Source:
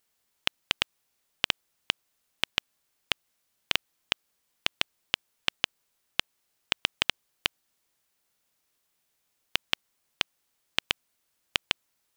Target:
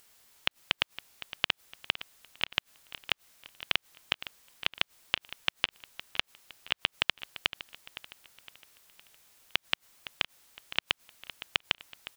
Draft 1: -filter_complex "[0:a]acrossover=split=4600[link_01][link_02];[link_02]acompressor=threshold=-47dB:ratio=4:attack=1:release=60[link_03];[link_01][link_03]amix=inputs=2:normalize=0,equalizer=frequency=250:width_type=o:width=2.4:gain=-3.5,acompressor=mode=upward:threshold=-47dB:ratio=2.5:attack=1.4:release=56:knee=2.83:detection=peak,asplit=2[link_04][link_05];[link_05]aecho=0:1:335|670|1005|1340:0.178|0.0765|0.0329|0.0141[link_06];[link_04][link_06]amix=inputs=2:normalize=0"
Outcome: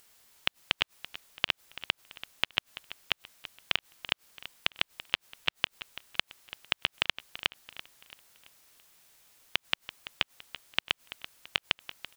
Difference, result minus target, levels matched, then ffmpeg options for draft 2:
echo 177 ms early
-filter_complex "[0:a]acrossover=split=4600[link_01][link_02];[link_02]acompressor=threshold=-47dB:ratio=4:attack=1:release=60[link_03];[link_01][link_03]amix=inputs=2:normalize=0,equalizer=frequency=250:width_type=o:width=2.4:gain=-3.5,acompressor=mode=upward:threshold=-47dB:ratio=2.5:attack=1.4:release=56:knee=2.83:detection=peak,asplit=2[link_04][link_05];[link_05]aecho=0:1:512|1024|1536|2048:0.178|0.0765|0.0329|0.0141[link_06];[link_04][link_06]amix=inputs=2:normalize=0"

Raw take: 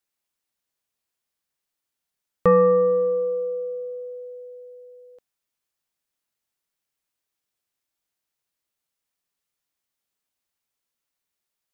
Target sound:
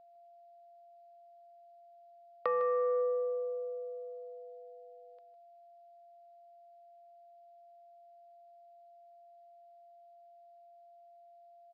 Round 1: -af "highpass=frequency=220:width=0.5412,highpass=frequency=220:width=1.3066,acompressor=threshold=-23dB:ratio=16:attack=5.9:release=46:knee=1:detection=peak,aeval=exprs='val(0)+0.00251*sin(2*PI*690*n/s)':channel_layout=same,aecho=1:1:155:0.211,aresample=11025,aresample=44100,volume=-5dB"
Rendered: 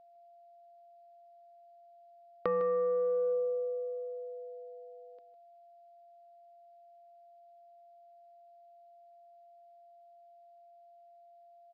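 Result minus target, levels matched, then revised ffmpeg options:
250 Hz band +16.5 dB
-af "highpass=frequency=530:width=0.5412,highpass=frequency=530:width=1.3066,acompressor=threshold=-23dB:ratio=16:attack=5.9:release=46:knee=1:detection=peak,aeval=exprs='val(0)+0.00251*sin(2*PI*690*n/s)':channel_layout=same,aecho=1:1:155:0.211,aresample=11025,aresample=44100,volume=-5dB"

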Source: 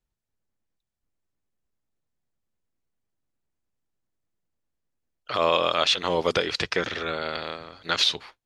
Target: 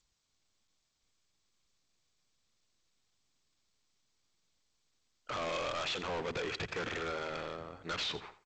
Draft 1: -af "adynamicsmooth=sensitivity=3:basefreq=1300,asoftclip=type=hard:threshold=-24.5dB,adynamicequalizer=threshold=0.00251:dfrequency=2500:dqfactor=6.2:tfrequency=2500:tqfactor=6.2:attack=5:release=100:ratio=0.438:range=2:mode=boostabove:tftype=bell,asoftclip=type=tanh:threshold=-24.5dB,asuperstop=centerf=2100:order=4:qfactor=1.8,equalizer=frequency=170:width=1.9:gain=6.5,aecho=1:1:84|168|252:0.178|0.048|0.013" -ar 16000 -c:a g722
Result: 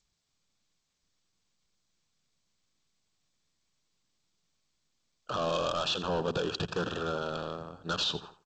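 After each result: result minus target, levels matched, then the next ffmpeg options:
soft clipping: distortion −11 dB; 2,000 Hz band −5.5 dB; 125 Hz band +3.5 dB
-af "adynamicsmooth=sensitivity=3:basefreq=1300,asoftclip=type=hard:threshold=-24.5dB,adynamicequalizer=threshold=0.00251:dfrequency=2500:dqfactor=6.2:tfrequency=2500:tqfactor=6.2:attack=5:release=100:ratio=0.438:range=2:mode=boostabove:tftype=bell,asoftclip=type=tanh:threshold=-34dB,asuperstop=centerf=2100:order=4:qfactor=1.8,equalizer=frequency=170:width=1.9:gain=6.5,aecho=1:1:84|168|252:0.178|0.048|0.013" -ar 16000 -c:a g722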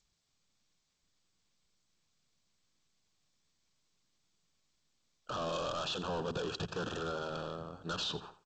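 2,000 Hz band −5.0 dB; 125 Hz band +5.0 dB
-af "adynamicsmooth=sensitivity=3:basefreq=1300,asoftclip=type=hard:threshold=-24.5dB,adynamicequalizer=threshold=0.00251:dfrequency=2500:dqfactor=6.2:tfrequency=2500:tqfactor=6.2:attack=5:release=100:ratio=0.438:range=2:mode=boostabove:tftype=bell,asoftclip=type=tanh:threshold=-34dB,equalizer=frequency=170:width=1.9:gain=6.5,aecho=1:1:84|168|252:0.178|0.048|0.013" -ar 16000 -c:a g722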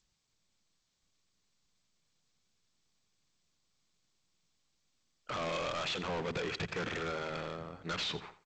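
125 Hz band +4.0 dB
-af "adynamicsmooth=sensitivity=3:basefreq=1300,asoftclip=type=hard:threshold=-24.5dB,adynamicequalizer=threshold=0.00251:dfrequency=2500:dqfactor=6.2:tfrequency=2500:tqfactor=6.2:attack=5:release=100:ratio=0.438:range=2:mode=boostabove:tftype=bell,asoftclip=type=tanh:threshold=-34dB,aecho=1:1:84|168|252:0.178|0.048|0.013" -ar 16000 -c:a g722

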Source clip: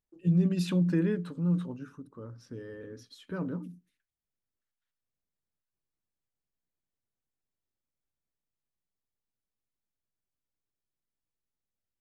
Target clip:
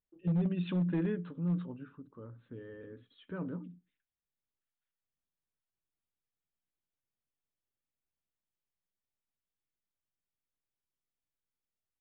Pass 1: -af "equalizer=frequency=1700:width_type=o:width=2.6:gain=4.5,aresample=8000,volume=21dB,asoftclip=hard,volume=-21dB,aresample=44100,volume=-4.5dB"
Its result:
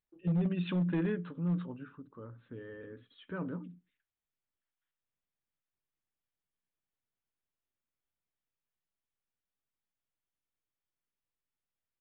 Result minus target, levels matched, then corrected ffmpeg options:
2,000 Hz band +4.0 dB
-af "aresample=8000,volume=21dB,asoftclip=hard,volume=-21dB,aresample=44100,volume=-4.5dB"

